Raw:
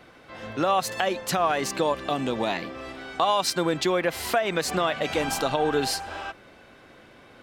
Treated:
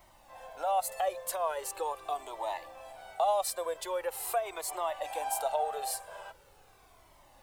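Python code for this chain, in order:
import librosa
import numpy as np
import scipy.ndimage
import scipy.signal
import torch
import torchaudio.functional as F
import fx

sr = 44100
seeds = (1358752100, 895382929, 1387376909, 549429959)

y = scipy.signal.sosfilt(scipy.signal.bessel(6, 860.0, 'highpass', norm='mag', fs=sr, output='sos'), x)
y = fx.band_shelf(y, sr, hz=2800.0, db=-15.5, octaves=2.7)
y = fx.dmg_noise_colour(y, sr, seeds[0], colour='pink', level_db=-65.0)
y = fx.comb_cascade(y, sr, direction='falling', hz=0.42)
y = F.gain(torch.from_numpy(y), 5.0).numpy()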